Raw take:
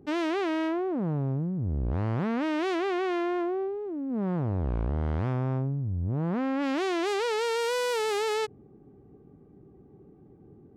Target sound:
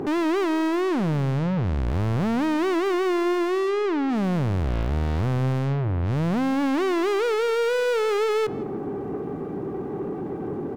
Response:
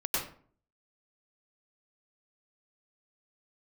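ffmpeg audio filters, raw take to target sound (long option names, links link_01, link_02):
-filter_complex "[0:a]asplit=2[link_01][link_02];[link_02]highpass=frequency=720:poles=1,volume=40dB,asoftclip=type=tanh:threshold=-17.5dB[link_03];[link_01][link_03]amix=inputs=2:normalize=0,lowpass=frequency=2500:poles=1,volume=-6dB,asplit=2[link_04][link_05];[link_05]adelay=164,lowpass=frequency=2800:poles=1,volume=-17dB,asplit=2[link_06][link_07];[link_07]adelay=164,lowpass=frequency=2800:poles=1,volume=0.32,asplit=2[link_08][link_09];[link_09]adelay=164,lowpass=frequency=2800:poles=1,volume=0.32[link_10];[link_04][link_06][link_08][link_10]amix=inputs=4:normalize=0"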